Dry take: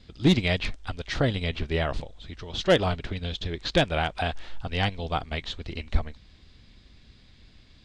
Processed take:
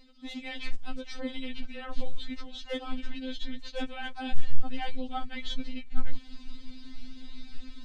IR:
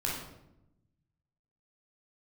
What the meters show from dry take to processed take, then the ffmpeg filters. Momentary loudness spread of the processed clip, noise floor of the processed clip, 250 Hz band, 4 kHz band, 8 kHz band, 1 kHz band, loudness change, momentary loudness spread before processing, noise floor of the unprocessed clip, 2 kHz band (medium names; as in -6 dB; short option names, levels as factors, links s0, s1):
12 LU, -47 dBFS, -8.5 dB, -9.5 dB, -10.5 dB, -9.0 dB, -12.0 dB, 13 LU, -55 dBFS, -10.5 dB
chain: -af "areverse,acompressor=threshold=0.01:ratio=6,areverse,asubboost=boost=4.5:cutoff=210,afftfilt=real='re*3.46*eq(mod(b,12),0)':imag='im*3.46*eq(mod(b,12),0)':win_size=2048:overlap=0.75,volume=2.51"